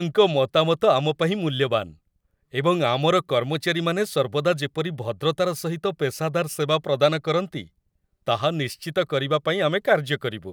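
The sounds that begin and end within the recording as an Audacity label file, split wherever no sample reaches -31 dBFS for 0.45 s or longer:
2.540000	7.620000	sound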